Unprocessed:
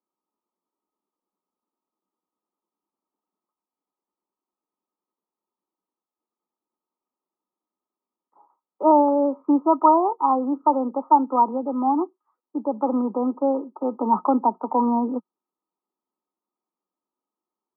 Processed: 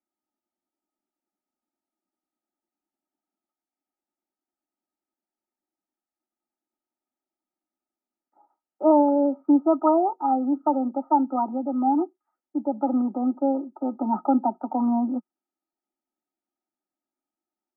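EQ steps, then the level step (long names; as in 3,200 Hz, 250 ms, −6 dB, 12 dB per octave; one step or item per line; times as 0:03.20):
Butterworth band-reject 1,100 Hz, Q 5.9
high-frequency loss of the air 54 metres
phaser with its sweep stopped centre 690 Hz, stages 8
+1.0 dB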